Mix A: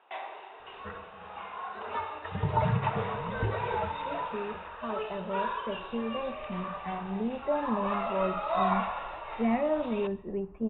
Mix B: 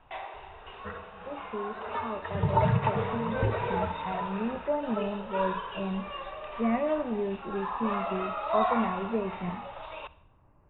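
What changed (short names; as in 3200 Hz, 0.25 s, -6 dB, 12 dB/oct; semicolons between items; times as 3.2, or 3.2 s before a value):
speech: entry -2.80 s; second sound: send on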